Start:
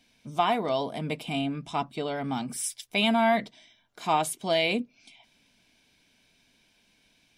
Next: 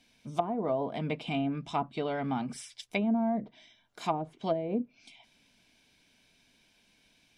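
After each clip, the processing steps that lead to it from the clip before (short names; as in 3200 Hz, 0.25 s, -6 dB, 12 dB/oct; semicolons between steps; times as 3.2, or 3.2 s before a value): treble ducked by the level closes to 440 Hz, closed at -21 dBFS; gain -1 dB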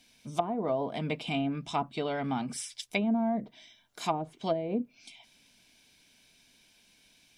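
high shelf 4100 Hz +9 dB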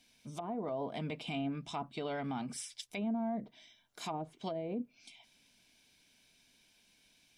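limiter -24 dBFS, peak gain reduction 10.5 dB; gain -5 dB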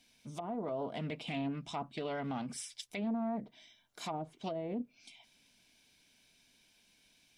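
Doppler distortion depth 0.25 ms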